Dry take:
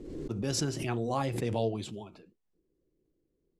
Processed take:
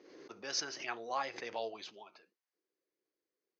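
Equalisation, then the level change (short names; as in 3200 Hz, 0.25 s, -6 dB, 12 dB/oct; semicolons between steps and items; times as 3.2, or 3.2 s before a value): HPF 680 Hz 12 dB/oct; rippled Chebyshev low-pass 6500 Hz, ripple 6 dB; +2.5 dB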